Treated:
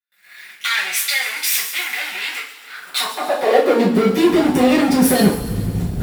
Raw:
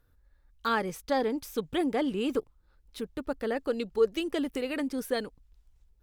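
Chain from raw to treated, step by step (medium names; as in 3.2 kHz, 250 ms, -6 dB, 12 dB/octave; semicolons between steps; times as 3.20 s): recorder AGC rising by 66 dB/s; waveshaping leveller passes 2; bass shelf 290 Hz +7 dB; compression 2.5:1, threshold -23 dBFS, peak gain reduction 9 dB; bass shelf 70 Hz +5.5 dB; waveshaping leveller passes 5; band-stop 6.2 kHz, Q 13; on a send: feedback echo behind a high-pass 139 ms, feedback 52%, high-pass 4.4 kHz, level -11.5 dB; on the sum: two-slope reverb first 0.37 s, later 2.5 s, from -18 dB, DRR -9 dB; high-pass sweep 2.2 kHz -> 110 Hz, 2.63–4.48 s; trim -11 dB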